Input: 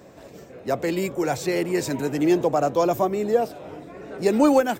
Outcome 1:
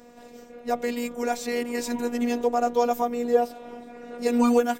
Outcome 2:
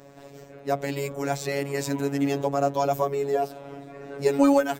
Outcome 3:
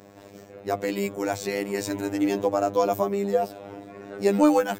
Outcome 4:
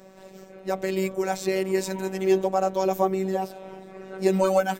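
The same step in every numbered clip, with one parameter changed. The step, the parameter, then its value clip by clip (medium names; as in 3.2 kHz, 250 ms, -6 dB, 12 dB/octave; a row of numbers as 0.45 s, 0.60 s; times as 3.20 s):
robot voice, frequency: 240 Hz, 140 Hz, 100 Hz, 190 Hz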